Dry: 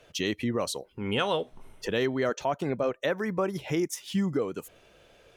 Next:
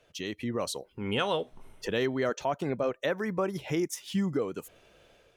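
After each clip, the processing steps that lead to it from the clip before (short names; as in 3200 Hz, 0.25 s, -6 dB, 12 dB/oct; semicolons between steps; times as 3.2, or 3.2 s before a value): AGC gain up to 6 dB; gain -7.5 dB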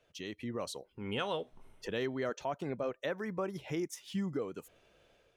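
high shelf 8500 Hz -4 dB; gain -6.5 dB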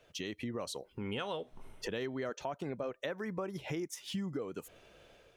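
compressor 3:1, threshold -44 dBFS, peak gain reduction 10 dB; gain +6.5 dB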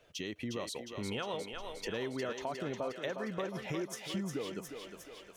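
thinning echo 0.358 s, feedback 67%, high-pass 400 Hz, level -5 dB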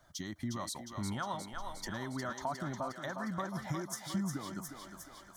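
fixed phaser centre 1100 Hz, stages 4; gain +5 dB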